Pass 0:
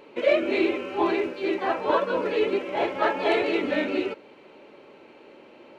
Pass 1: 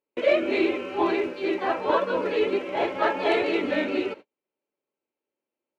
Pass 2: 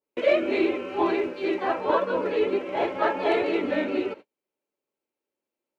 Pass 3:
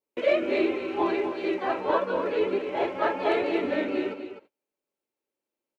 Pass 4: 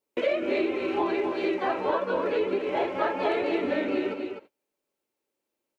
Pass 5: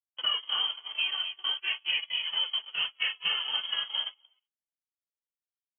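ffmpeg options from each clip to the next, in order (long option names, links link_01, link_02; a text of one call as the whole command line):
ffmpeg -i in.wav -af "agate=range=-40dB:threshold=-39dB:ratio=16:detection=peak" out.wav
ffmpeg -i in.wav -af "adynamicequalizer=threshold=0.0126:dfrequency=1800:dqfactor=0.7:tfrequency=1800:tqfactor=0.7:attack=5:release=100:ratio=0.375:range=2.5:mode=cutabove:tftype=highshelf" out.wav
ffmpeg -i in.wav -af "aecho=1:1:253:0.335,volume=-2dB" out.wav
ffmpeg -i in.wav -af "acompressor=threshold=-28dB:ratio=4,volume=4.5dB" out.wav
ffmpeg -i in.wav -af "agate=range=-31dB:threshold=-26dB:ratio=16:detection=peak,lowpass=frequency=3000:width_type=q:width=0.5098,lowpass=frequency=3000:width_type=q:width=0.6013,lowpass=frequency=3000:width_type=q:width=0.9,lowpass=frequency=3000:width_type=q:width=2.563,afreqshift=-3500,volume=-3dB" out.wav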